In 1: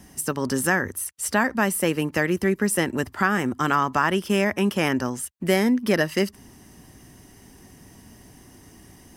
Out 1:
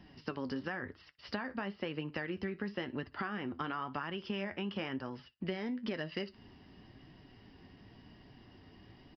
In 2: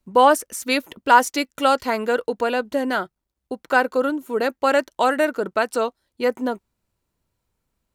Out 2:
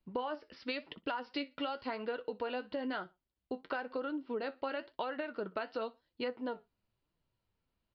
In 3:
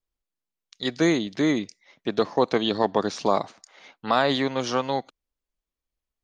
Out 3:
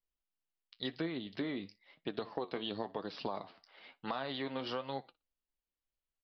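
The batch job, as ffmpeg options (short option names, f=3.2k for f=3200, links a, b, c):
-af "equalizer=f=2.9k:w=7.7:g=5.5,aecho=1:1:60|120:0.0631|0.012,alimiter=limit=-9.5dB:level=0:latency=1:release=201,flanger=delay=5.7:depth=6.3:regen=58:speed=0.98:shape=triangular,aresample=11025,aresample=44100,acompressor=threshold=-31dB:ratio=6,volume=-3.5dB"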